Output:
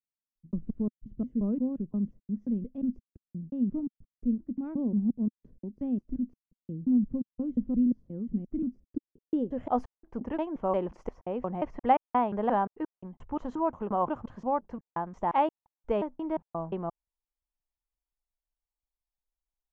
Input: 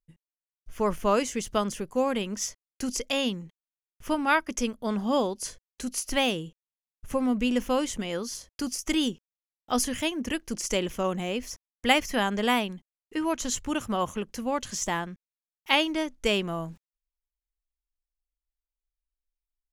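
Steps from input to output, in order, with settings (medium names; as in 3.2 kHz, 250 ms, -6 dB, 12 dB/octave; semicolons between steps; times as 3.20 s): slices played last to first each 176 ms, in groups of 3; low-pass sweep 230 Hz -> 890 Hz, 8.79–9.79 s; trim -4 dB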